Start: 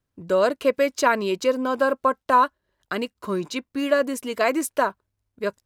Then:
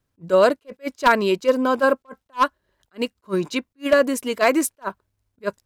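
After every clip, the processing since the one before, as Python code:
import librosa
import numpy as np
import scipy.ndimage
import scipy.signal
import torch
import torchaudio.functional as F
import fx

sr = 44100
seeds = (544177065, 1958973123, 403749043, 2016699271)

y = 10.0 ** (-10.5 / 20.0) * (np.abs((x / 10.0 ** (-10.5 / 20.0) + 3.0) % 4.0 - 2.0) - 1.0)
y = fx.attack_slew(y, sr, db_per_s=440.0)
y = y * 10.0 ** (4.5 / 20.0)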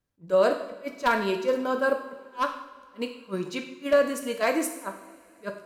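y = fx.rev_double_slope(x, sr, seeds[0], early_s=0.74, late_s=3.3, knee_db=-19, drr_db=3.5)
y = y * 10.0 ** (-8.0 / 20.0)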